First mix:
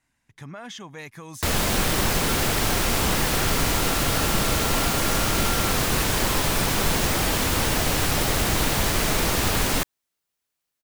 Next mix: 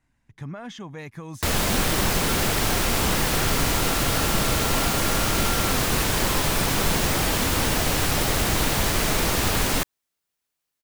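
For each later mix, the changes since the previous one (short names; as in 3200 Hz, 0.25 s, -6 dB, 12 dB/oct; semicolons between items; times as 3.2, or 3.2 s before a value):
speech: add tilt -2 dB/oct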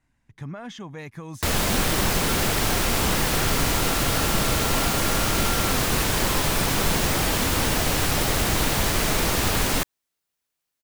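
none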